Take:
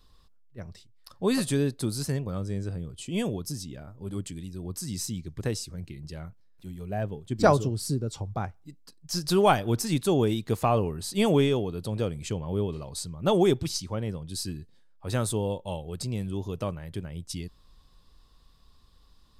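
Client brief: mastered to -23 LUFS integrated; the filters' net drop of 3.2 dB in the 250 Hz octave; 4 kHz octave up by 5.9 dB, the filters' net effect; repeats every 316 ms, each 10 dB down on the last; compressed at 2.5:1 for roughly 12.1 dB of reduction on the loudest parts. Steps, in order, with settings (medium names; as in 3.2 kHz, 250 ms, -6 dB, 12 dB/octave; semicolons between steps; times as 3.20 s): peaking EQ 250 Hz -4.5 dB; peaking EQ 4 kHz +7.5 dB; compression 2.5:1, threshold -34 dBFS; feedback delay 316 ms, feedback 32%, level -10 dB; trim +13 dB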